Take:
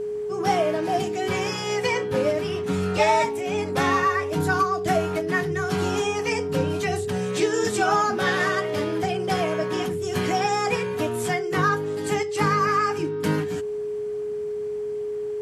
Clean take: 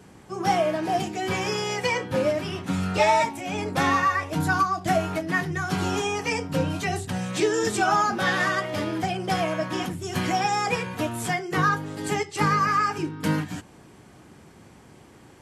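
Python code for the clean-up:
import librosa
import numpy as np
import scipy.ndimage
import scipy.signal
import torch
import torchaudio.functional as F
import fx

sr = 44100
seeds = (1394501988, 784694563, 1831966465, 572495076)

y = fx.notch(x, sr, hz=420.0, q=30.0)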